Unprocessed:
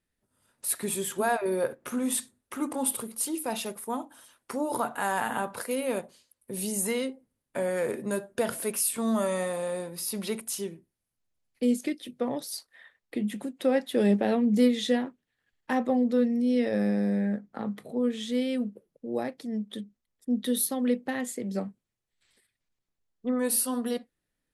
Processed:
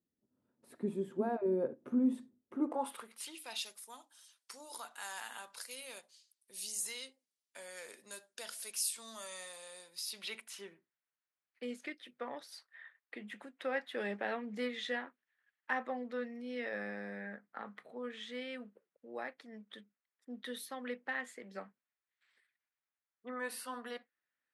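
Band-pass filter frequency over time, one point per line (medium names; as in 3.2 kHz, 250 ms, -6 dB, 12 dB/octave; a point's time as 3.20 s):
band-pass filter, Q 1.5
2.54 s 270 Hz
2.93 s 1.5 kHz
3.72 s 5.2 kHz
9.92 s 5.2 kHz
10.63 s 1.6 kHz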